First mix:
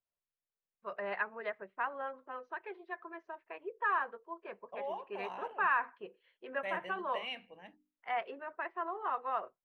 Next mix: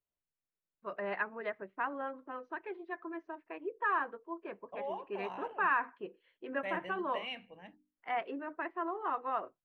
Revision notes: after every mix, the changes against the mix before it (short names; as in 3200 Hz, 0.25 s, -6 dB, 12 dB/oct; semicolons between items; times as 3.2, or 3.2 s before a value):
first voice: add bell 300 Hz +15 dB 0.32 oct; master: add tone controls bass +6 dB, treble -3 dB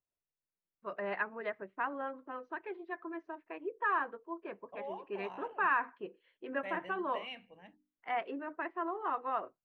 second voice -3.5 dB